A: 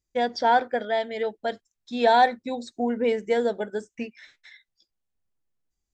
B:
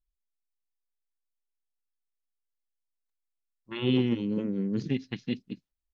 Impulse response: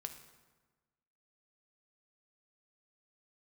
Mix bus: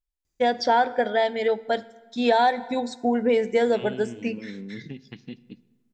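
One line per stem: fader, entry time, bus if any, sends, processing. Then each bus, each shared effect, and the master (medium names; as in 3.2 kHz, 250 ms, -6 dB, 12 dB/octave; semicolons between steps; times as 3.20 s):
+1.5 dB, 0.25 s, send -4 dB, none
-6.5 dB, 0.00 s, send -4 dB, compression 4:1, threshold -31 dBFS, peak gain reduction 9.5 dB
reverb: on, RT60 1.3 s, pre-delay 3 ms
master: compression 6:1, threshold -16 dBFS, peak gain reduction 7.5 dB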